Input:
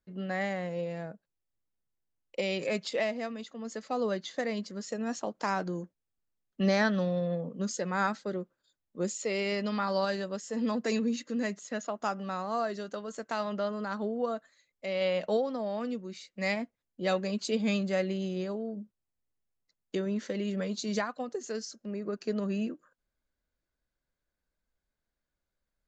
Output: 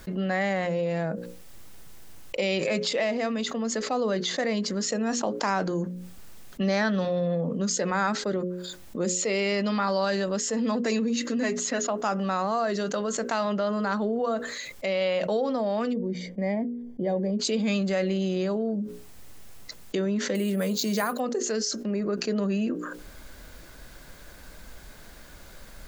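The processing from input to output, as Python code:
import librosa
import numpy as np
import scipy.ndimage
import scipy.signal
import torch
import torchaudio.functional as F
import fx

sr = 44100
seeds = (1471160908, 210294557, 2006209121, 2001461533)

y = fx.comb(x, sr, ms=7.4, depth=0.59, at=(11.29, 11.86))
y = fx.moving_average(y, sr, points=33, at=(15.92, 17.39), fade=0.02)
y = fx.resample_bad(y, sr, factor=4, down='none', up='hold', at=(20.35, 21.2))
y = fx.hum_notches(y, sr, base_hz=60, count=9)
y = fx.env_flatten(y, sr, amount_pct=70)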